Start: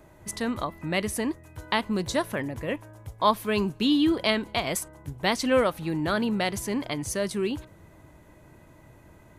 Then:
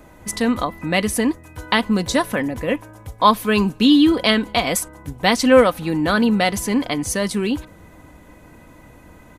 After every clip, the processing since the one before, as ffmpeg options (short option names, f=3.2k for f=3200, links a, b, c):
-af "aecho=1:1:4:0.43,volume=7.5dB"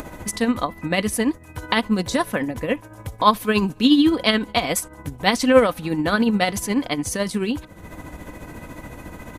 -af "acompressor=mode=upward:threshold=-23dB:ratio=2.5,tremolo=f=14:d=0.51"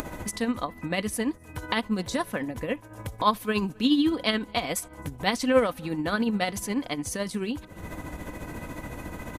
-filter_complex "[0:a]acompressor=mode=upward:threshold=-21dB:ratio=2.5,asplit=2[a][b];[b]adelay=262.4,volume=-29dB,highshelf=f=4k:g=-5.9[c];[a][c]amix=inputs=2:normalize=0,volume=-7dB"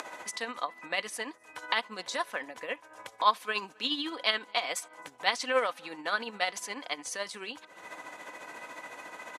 -af "highpass=740,lowpass=7.4k"